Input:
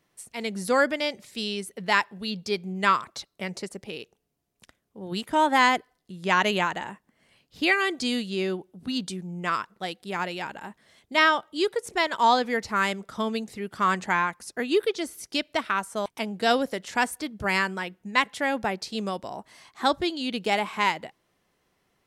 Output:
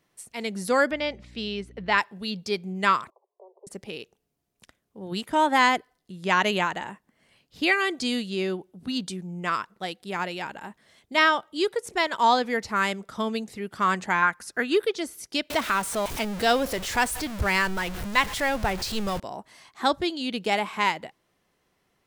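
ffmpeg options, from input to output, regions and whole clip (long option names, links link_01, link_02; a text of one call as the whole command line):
ffmpeg -i in.wav -filter_complex "[0:a]asettb=1/sr,asplit=3[link_01][link_02][link_03];[link_01]atrim=end=0.914[link_04];[link_02]atrim=start=0.91:end=1.98,asetpts=PTS-STARTPTS,afade=type=in:duration=0.004:curve=qsin,afade=type=out:start_time=1.066:duration=0.004:curve=qsin,lowpass=3600,aeval=exprs='val(0)+0.00398*(sin(2*PI*60*n/s)+sin(2*PI*2*60*n/s)/2+sin(2*PI*3*60*n/s)/3+sin(2*PI*4*60*n/s)/4+sin(2*PI*5*60*n/s)/5)':channel_layout=same[link_05];[link_03]atrim=start=1.976[link_06];[link_04][link_05]acrossfade=duration=0.004:curve1=hsin:curve2=qsin[link_07];[link_07][link_06]acrossfade=duration=0.004:curve1=qsin:curve2=hsin,asettb=1/sr,asplit=3[link_08][link_09][link_10];[link_08]atrim=end=3.104[link_11];[link_09]atrim=start=3.1:end=3.67,asetpts=PTS-STARTPTS,afade=type=in:duration=0.004:curve=qsin,afade=type=out:start_time=0.566:duration=0.004:curve=qsin,acompressor=threshold=-50dB:ratio=2:attack=3.2:release=140:knee=1:detection=peak,asuperpass=centerf=630:order=20:qfactor=0.89[link_12];[link_10]atrim=start=3.666[link_13];[link_11][link_12]acrossfade=duration=0.004:curve1=hsin:curve2=qsin[link_14];[link_14][link_13]acrossfade=duration=0.004:curve1=qsin:curve2=hsin,asettb=1/sr,asplit=3[link_15][link_16][link_17];[link_15]atrim=end=14.224[link_18];[link_16]atrim=start=14.22:end=14.77,asetpts=PTS-STARTPTS,afade=type=in:duration=0.004:curve=qsin,afade=type=out:start_time=0.546:duration=0.004:curve=qsin,equalizer=frequency=1500:width_type=o:width=0.65:gain=10,acompressor=mode=upward:threshold=-38dB:ratio=2.5:attack=3.2:release=140:knee=2.83:detection=peak[link_19];[link_17]atrim=start=14.766[link_20];[link_18][link_19]acrossfade=duration=0.004:curve1=hsin:curve2=qsin[link_21];[link_21][link_20]acrossfade=duration=0.004:curve1=qsin:curve2=hsin,asettb=1/sr,asplit=3[link_22][link_23][link_24];[link_22]atrim=end=15.504[link_25];[link_23]atrim=start=15.5:end=19.2,asetpts=PTS-STARTPTS,afade=type=in:duration=0.004:curve=qsin,afade=type=out:start_time=3.696:duration=0.004:curve=qsin,aeval=exprs='val(0)+0.5*0.0316*sgn(val(0))':channel_layout=same,asubboost=boost=11:cutoff=81,acompressor=mode=upward:threshold=-29dB:ratio=2.5:attack=3.2:release=140:knee=2.83:detection=peak[link_26];[link_24]atrim=start=19.196[link_27];[link_25][link_26]acrossfade=duration=0.004:curve1=hsin:curve2=qsin[link_28];[link_28][link_27]acrossfade=duration=0.004:curve1=qsin:curve2=hsin" out.wav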